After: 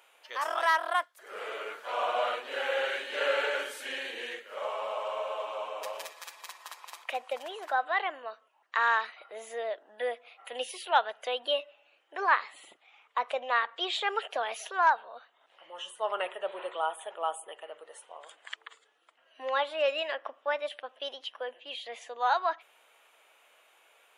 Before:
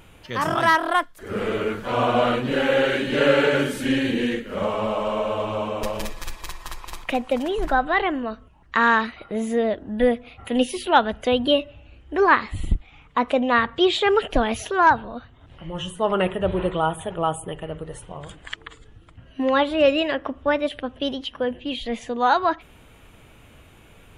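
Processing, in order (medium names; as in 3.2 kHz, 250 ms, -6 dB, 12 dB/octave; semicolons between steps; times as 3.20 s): high-pass 560 Hz 24 dB/octave; trim -7.5 dB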